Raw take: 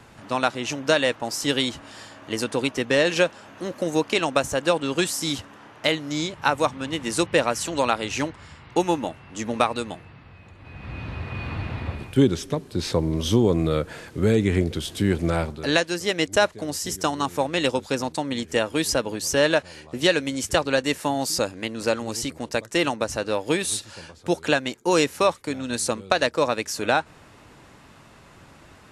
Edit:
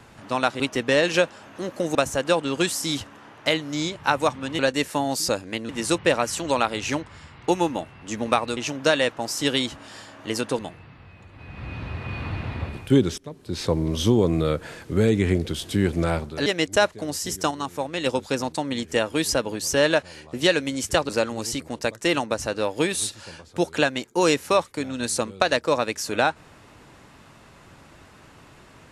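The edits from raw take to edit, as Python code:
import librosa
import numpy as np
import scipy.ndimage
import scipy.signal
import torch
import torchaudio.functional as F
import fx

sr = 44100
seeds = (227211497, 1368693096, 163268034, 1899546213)

y = fx.edit(x, sr, fx.move(start_s=0.6, length_s=2.02, to_s=9.85),
    fx.cut(start_s=3.97, length_s=0.36),
    fx.fade_in_from(start_s=12.44, length_s=0.54, floor_db=-20.5),
    fx.cut(start_s=15.72, length_s=0.34),
    fx.clip_gain(start_s=17.11, length_s=0.55, db=-4.5),
    fx.move(start_s=20.69, length_s=1.1, to_s=6.97), tone=tone)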